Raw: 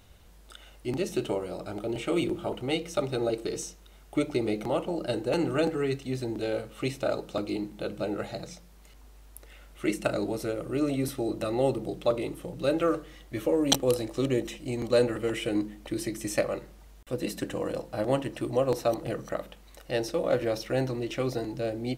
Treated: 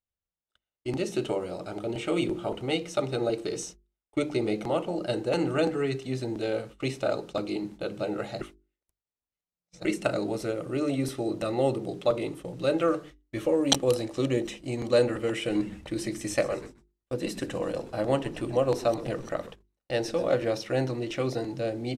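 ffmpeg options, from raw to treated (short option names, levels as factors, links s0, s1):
-filter_complex "[0:a]asplit=3[s0][s1][s2];[s0]afade=t=out:st=15.49:d=0.02[s3];[s1]asplit=7[s4][s5][s6][s7][s8][s9][s10];[s5]adelay=125,afreqshift=-120,volume=0.15[s11];[s6]adelay=250,afreqshift=-240,volume=0.0902[s12];[s7]adelay=375,afreqshift=-360,volume=0.0537[s13];[s8]adelay=500,afreqshift=-480,volume=0.0324[s14];[s9]adelay=625,afreqshift=-600,volume=0.0195[s15];[s10]adelay=750,afreqshift=-720,volume=0.0116[s16];[s4][s11][s12][s13][s14][s15][s16]amix=inputs=7:normalize=0,afade=t=in:st=15.49:d=0.02,afade=t=out:st=20.29:d=0.02[s17];[s2]afade=t=in:st=20.29:d=0.02[s18];[s3][s17][s18]amix=inputs=3:normalize=0,asplit=3[s19][s20][s21];[s19]atrim=end=8.412[s22];[s20]atrim=start=8.408:end=9.852,asetpts=PTS-STARTPTS,areverse[s23];[s21]atrim=start=9.848[s24];[s22][s23]acrossfade=d=0.004:c1=hsin:c2=hsin[s25];[s25][s24]acrossfade=d=0.004:c1=hsin:c2=hsin,agate=range=0.00891:threshold=0.00794:ratio=16:detection=peak,lowpass=9500,bandreject=f=50:t=h:w=6,bandreject=f=100:t=h:w=6,bandreject=f=150:t=h:w=6,bandreject=f=200:t=h:w=6,bandreject=f=250:t=h:w=6,bandreject=f=300:t=h:w=6,bandreject=f=350:t=h:w=6,bandreject=f=400:t=h:w=6,volume=1.12"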